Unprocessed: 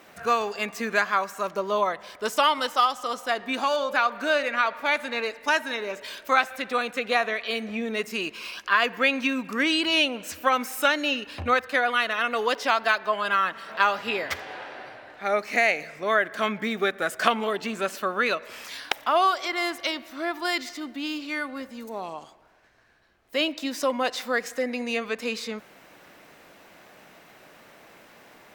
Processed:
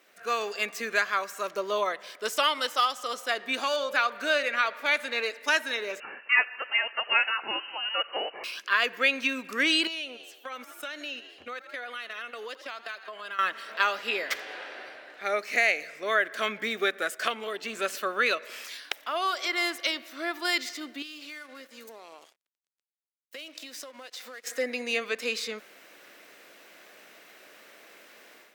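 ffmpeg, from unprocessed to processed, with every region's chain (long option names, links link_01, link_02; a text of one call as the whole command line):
ffmpeg -i in.wav -filter_complex "[0:a]asettb=1/sr,asplit=3[link_01][link_02][link_03];[link_01]atrim=end=6.004[link_04];[link_02]atrim=start=6:end=8.44,asetpts=PTS-STARTPTS,afade=type=in:duration=0.004:curve=qsin,afade=type=out:start_time=2.436:duration=0.004:curve=qsin,highpass=frequency=400:width=0.5412,highpass=frequency=400:width=1.3066,highshelf=frequency=2600:gain=10,lowpass=frequency=2800:width_type=q:width=0.5098,lowpass=frequency=2800:width_type=q:width=0.6013,lowpass=frequency=2800:width_type=q:width=0.9,lowpass=frequency=2800:width_type=q:width=2.563,afreqshift=-3300[link_05];[link_03]atrim=start=8.436[link_06];[link_04][link_05]acrossfade=duration=0.004:curve1=hsin:curve2=qsin[link_07];[link_07][link_06]acrossfade=duration=0.004:curve1=qsin:curve2=hsin,asettb=1/sr,asplit=3[link_08][link_09][link_10];[link_08]atrim=end=9.874[link_11];[link_09]atrim=start=9.87:end=13.39,asetpts=PTS-STARTPTS,afade=type=in:duration=0.004:curve=qsin,afade=type=out:start_time=3.516:duration=0.004:curve=qsin,agate=range=-18dB:threshold=-32dB:ratio=16:release=100:detection=peak,asplit=6[link_12][link_13][link_14][link_15][link_16][link_17];[link_13]adelay=81,afreqshift=44,volume=-22dB[link_18];[link_14]adelay=162,afreqshift=88,volume=-26.4dB[link_19];[link_15]adelay=243,afreqshift=132,volume=-30.9dB[link_20];[link_16]adelay=324,afreqshift=176,volume=-35.3dB[link_21];[link_17]adelay=405,afreqshift=220,volume=-39.7dB[link_22];[link_12][link_18][link_19][link_20][link_21][link_22]amix=inputs=6:normalize=0,atrim=end_sample=155232,acompressor=threshold=-37dB:ratio=3:attack=3.2:release=140:knee=1:detection=peak[link_23];[link_10]atrim=start=13.386[link_24];[link_11][link_23]acrossfade=duration=0.004:curve1=hsin:curve2=qsin[link_25];[link_25][link_24]acrossfade=duration=0.004:curve1=qsin:curve2=hsin,asettb=1/sr,asplit=3[link_26][link_27][link_28];[link_26]atrim=end=21.024[link_29];[link_27]atrim=start=21.02:end=24.47,asetpts=PTS-STARTPTS,afade=type=in:duration=0.004:curve=qsin,afade=type=out:start_time=3.446:duration=0.004:curve=qsin,highpass=frequency=300:poles=1,acompressor=threshold=-36dB:ratio=10:attack=3.2:release=140:knee=1:detection=peak,aeval=exprs='sgn(val(0))*max(abs(val(0))-0.00251,0)':channel_layout=same[link_30];[link_28]atrim=start=24.466[link_31];[link_29][link_30]acrossfade=duration=0.004:curve1=hsin:curve2=qsin[link_32];[link_32][link_31]acrossfade=duration=0.004:curve1=qsin:curve2=hsin,highpass=400,equalizer=frequency=870:width_type=o:width=0.98:gain=-9,dynaudnorm=framelen=200:gausssize=3:maxgain=9.5dB,volume=-7.5dB" out.wav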